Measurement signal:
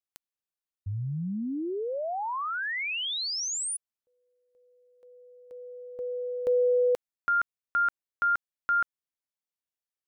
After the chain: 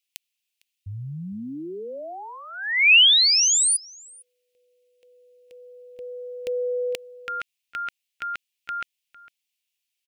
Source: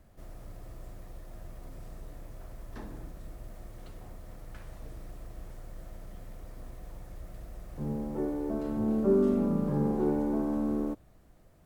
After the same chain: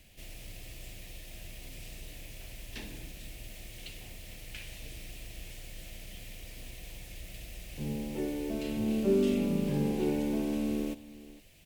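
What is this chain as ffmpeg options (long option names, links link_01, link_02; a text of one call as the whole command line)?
ffmpeg -i in.wav -filter_complex "[0:a]highshelf=frequency=1800:width_type=q:width=3:gain=13,asplit=2[link_01][link_02];[link_02]adelay=454.8,volume=-18dB,highshelf=frequency=4000:gain=-10.2[link_03];[link_01][link_03]amix=inputs=2:normalize=0,volume=-1.5dB" out.wav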